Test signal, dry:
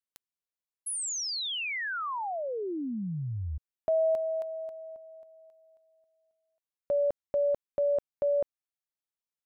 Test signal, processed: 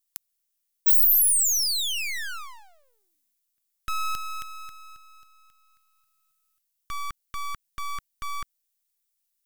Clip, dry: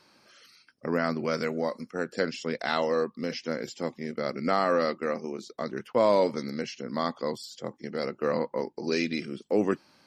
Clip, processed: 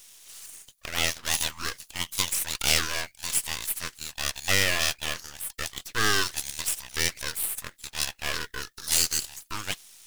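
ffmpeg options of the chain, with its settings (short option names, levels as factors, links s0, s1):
-af "highpass=f=650:w=0.5412,highpass=f=650:w=1.3066,aeval=exprs='abs(val(0))':c=same,crystalizer=i=7.5:c=0"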